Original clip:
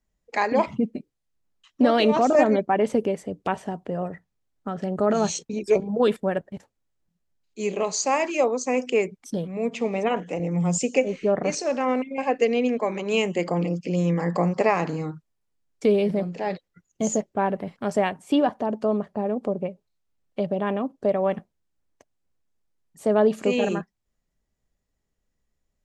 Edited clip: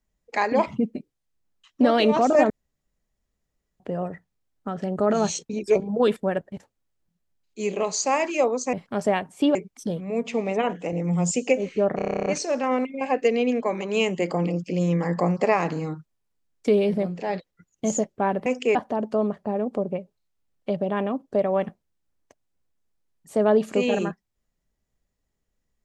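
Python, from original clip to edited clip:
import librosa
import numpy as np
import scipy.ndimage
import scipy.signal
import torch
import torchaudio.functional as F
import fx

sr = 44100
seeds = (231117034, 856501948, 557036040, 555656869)

y = fx.edit(x, sr, fx.room_tone_fill(start_s=2.5, length_s=1.3),
    fx.swap(start_s=8.73, length_s=0.29, other_s=17.63, other_length_s=0.82),
    fx.stutter(start_s=11.43, slice_s=0.03, count=11), tone=tone)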